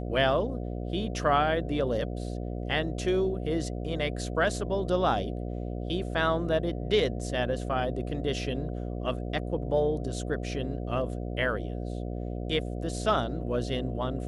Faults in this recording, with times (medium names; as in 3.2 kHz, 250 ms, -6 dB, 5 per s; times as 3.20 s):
buzz 60 Hz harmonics 12 -34 dBFS